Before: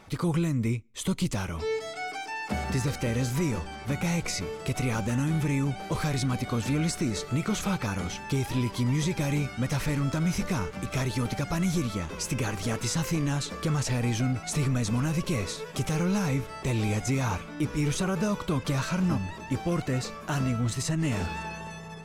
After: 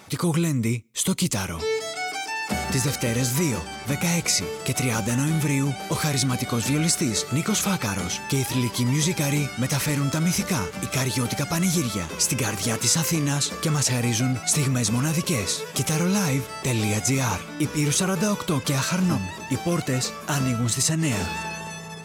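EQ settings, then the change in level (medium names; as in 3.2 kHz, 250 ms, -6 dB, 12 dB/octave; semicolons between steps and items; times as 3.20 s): high-pass 91 Hz; treble shelf 4.3 kHz +11 dB; +4.0 dB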